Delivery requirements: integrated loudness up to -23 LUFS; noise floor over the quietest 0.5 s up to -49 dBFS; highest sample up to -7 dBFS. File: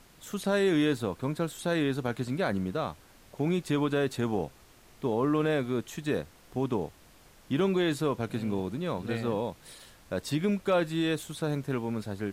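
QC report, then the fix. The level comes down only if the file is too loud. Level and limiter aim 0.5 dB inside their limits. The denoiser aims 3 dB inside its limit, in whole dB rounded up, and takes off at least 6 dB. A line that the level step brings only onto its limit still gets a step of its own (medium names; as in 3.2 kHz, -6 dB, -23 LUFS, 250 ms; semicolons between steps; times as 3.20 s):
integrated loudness -30.5 LUFS: pass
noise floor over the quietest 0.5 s -56 dBFS: pass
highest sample -16.5 dBFS: pass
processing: none needed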